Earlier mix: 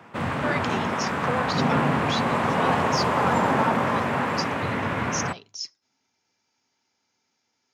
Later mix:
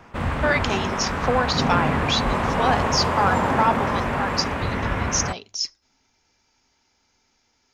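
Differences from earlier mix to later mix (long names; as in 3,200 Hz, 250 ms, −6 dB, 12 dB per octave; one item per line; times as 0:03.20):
speech +7.5 dB
master: remove high-pass filter 110 Hz 24 dB per octave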